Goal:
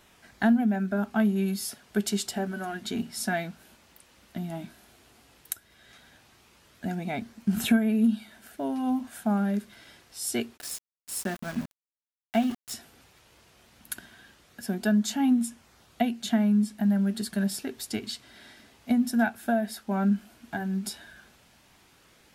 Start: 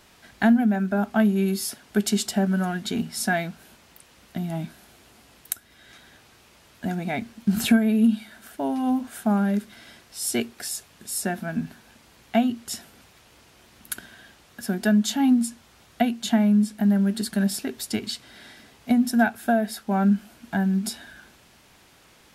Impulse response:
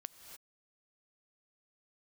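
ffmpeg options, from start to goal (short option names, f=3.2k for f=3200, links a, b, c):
-filter_complex "[0:a]flanger=delay=0.1:depth=3.4:regen=-74:speed=0.13:shape=sinusoidal,asplit=3[a][b][c];[a]afade=t=out:st=10.56:d=0.02[d];[b]aeval=exprs='val(0)*gte(abs(val(0)),0.015)':c=same,afade=t=in:st=10.56:d=0.02,afade=t=out:st=12.72:d=0.02[e];[c]afade=t=in:st=12.72:d=0.02[f];[d][e][f]amix=inputs=3:normalize=0"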